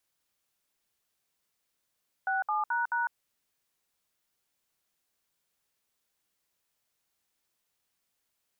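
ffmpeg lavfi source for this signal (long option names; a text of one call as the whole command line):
ffmpeg -f lavfi -i "aevalsrc='0.0355*clip(min(mod(t,0.216),0.153-mod(t,0.216))/0.002,0,1)*(eq(floor(t/0.216),0)*(sin(2*PI*770*mod(t,0.216))+sin(2*PI*1477*mod(t,0.216)))+eq(floor(t/0.216),1)*(sin(2*PI*852*mod(t,0.216))+sin(2*PI*1209*mod(t,0.216)))+eq(floor(t/0.216),2)*(sin(2*PI*941*mod(t,0.216))+sin(2*PI*1477*mod(t,0.216)))+eq(floor(t/0.216),3)*(sin(2*PI*941*mod(t,0.216))+sin(2*PI*1477*mod(t,0.216))))':duration=0.864:sample_rate=44100" out.wav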